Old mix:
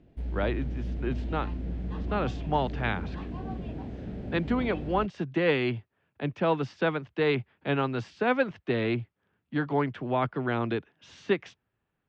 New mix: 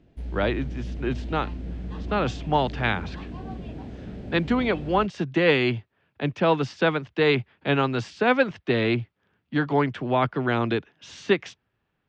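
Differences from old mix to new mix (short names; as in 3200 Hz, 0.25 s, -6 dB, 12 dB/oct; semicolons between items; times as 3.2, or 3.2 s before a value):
speech +4.5 dB; master: add high shelf 4100 Hz +9 dB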